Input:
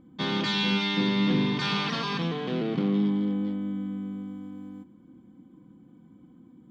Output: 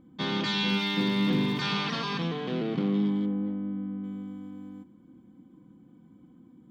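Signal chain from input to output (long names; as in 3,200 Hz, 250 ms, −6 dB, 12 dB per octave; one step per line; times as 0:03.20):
0:00.68–0:01.60: surface crackle 440 per second −40 dBFS
0:03.26–0:04.04: Bessel low-pass filter 1,500 Hz, order 2
level −1.5 dB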